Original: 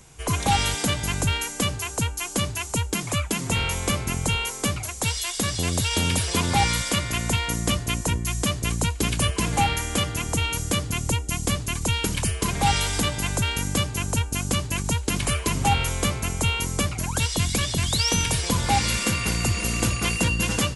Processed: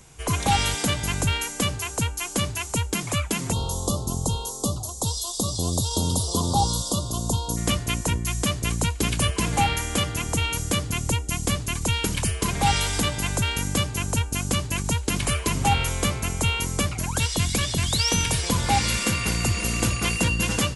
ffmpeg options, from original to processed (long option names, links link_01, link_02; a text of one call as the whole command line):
ffmpeg -i in.wav -filter_complex "[0:a]asplit=3[link_01][link_02][link_03];[link_01]afade=type=out:start_time=3.51:duration=0.02[link_04];[link_02]asuperstop=centerf=2000:order=8:qfactor=0.83,afade=type=in:start_time=3.51:duration=0.02,afade=type=out:start_time=7.56:duration=0.02[link_05];[link_03]afade=type=in:start_time=7.56:duration=0.02[link_06];[link_04][link_05][link_06]amix=inputs=3:normalize=0" out.wav